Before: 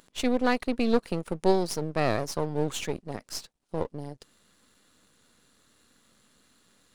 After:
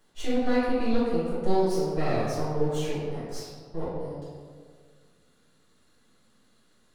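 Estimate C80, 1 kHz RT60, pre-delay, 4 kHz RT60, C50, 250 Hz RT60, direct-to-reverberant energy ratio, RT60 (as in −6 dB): 0.5 dB, 1.6 s, 3 ms, 0.90 s, −3.0 dB, 1.7 s, −15.0 dB, 1.8 s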